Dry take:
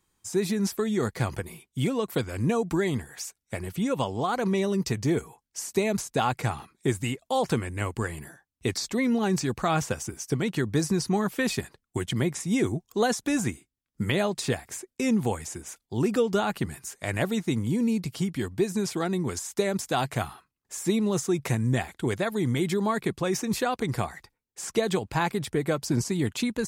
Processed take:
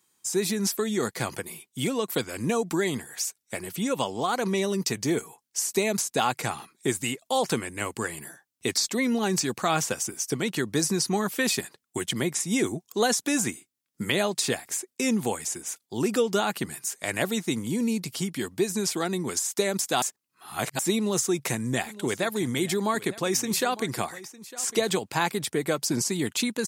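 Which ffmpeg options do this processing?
ffmpeg -i in.wav -filter_complex "[0:a]asplit=3[link_01][link_02][link_03];[link_01]afade=type=out:start_time=21.85:duration=0.02[link_04];[link_02]aecho=1:1:905:0.126,afade=type=in:start_time=21.85:duration=0.02,afade=type=out:start_time=24.89:duration=0.02[link_05];[link_03]afade=type=in:start_time=24.89:duration=0.02[link_06];[link_04][link_05][link_06]amix=inputs=3:normalize=0,asplit=3[link_07][link_08][link_09];[link_07]atrim=end=20.022[link_10];[link_08]atrim=start=20.018:end=20.792,asetpts=PTS-STARTPTS,areverse[link_11];[link_09]atrim=start=20.788[link_12];[link_10][link_11]acrossfade=duration=0.004:curve1=hsin:curve2=hsin[link_13];[link_13][link_12]acrossfade=duration=0.004:curve1=hsin:curve2=hsin,highpass=180,highshelf=frequency=3100:gain=8.5" out.wav

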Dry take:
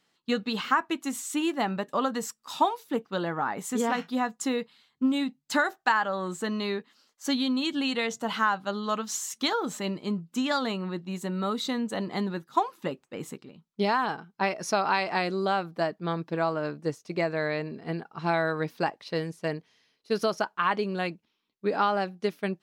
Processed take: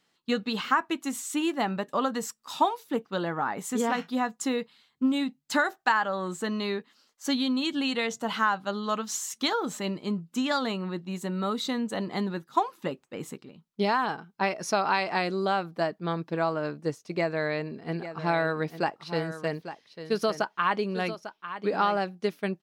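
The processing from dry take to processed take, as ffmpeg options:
ffmpeg -i in.wav -filter_complex "[0:a]asplit=3[link_01][link_02][link_03];[link_01]afade=type=out:start_time=17.91:duration=0.02[link_04];[link_02]aecho=1:1:848:0.266,afade=type=in:start_time=17.91:duration=0.02,afade=type=out:start_time=21.99:duration=0.02[link_05];[link_03]afade=type=in:start_time=21.99:duration=0.02[link_06];[link_04][link_05][link_06]amix=inputs=3:normalize=0" out.wav

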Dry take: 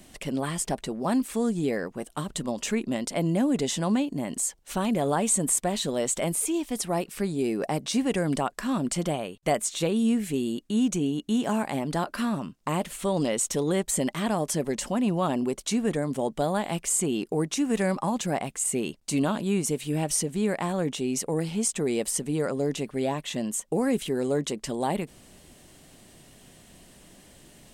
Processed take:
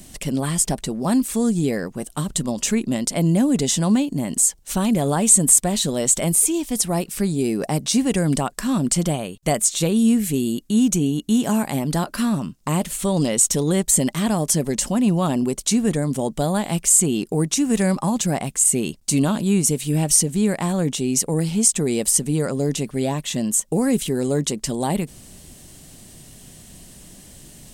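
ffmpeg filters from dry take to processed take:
ffmpeg -i in.wav -filter_complex "[0:a]asettb=1/sr,asplit=3[link_01][link_02][link_03];[link_01]atrim=end=9.834[link_04];[link_02]atrim=start=9.83:end=12,asetpts=PTS-STARTPTS,afade=type=in:duration=0.004:curve=qsin,afade=type=out:start_time=2.166:duration=0.004:curve=qsin,equalizer=frequency=12000:width=4.8:gain=7[link_05];[link_03]atrim=start=11.996[link_06];[link_04][link_05]acrossfade=duration=0.004:curve1=hsin:curve2=qsin[link_07];[link_07][link_06]acrossfade=duration=0.004:curve1=qsin:curve2=hsin,bass=frequency=250:gain=8,treble=frequency=4000:gain=9,volume=2.5dB" out.wav

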